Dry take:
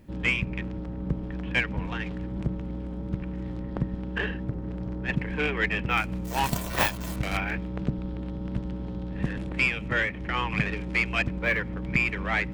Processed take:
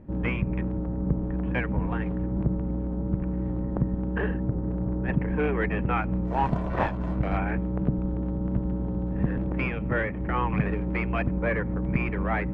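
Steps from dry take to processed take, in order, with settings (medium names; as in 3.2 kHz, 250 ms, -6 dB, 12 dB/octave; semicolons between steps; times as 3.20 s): low-pass 1.1 kHz 12 dB/octave; in parallel at -2 dB: peak limiter -23 dBFS, peak gain reduction 10 dB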